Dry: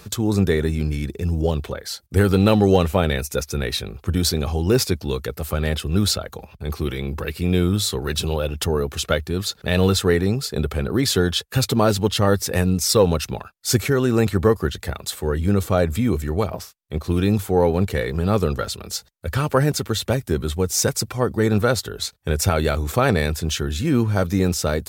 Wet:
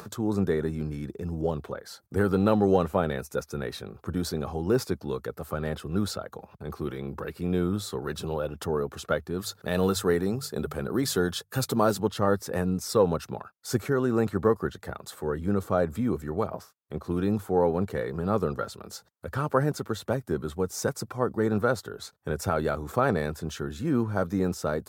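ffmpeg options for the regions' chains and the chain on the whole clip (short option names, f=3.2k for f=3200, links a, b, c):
-filter_complex "[0:a]asettb=1/sr,asplit=3[a][b][c];[a]atrim=end=9.384[d];[b]atrim=start=9.38:end=12,asetpts=PTS-STARTPTS,afade=t=in:d=0.004:c=qsin,afade=t=out:st=2.616:d=0.004:c=qsin,highshelf=f=4.5k:g=9.5,bandreject=f=50:t=h:w=6,bandreject=f=100:t=h:w=6,bandreject=f=150:t=h:w=6[e];[c]atrim=start=11.996[f];[d][e]acrossfade=d=0.004:c1=hsin:c2=qsin[g];[g][f]acrossfade=d=0.004:c1=qsin:c2=hsin,highpass=130,highshelf=f=1.8k:t=q:w=1.5:g=-8,acompressor=mode=upward:threshold=-31dB:ratio=2.5,volume=-6dB"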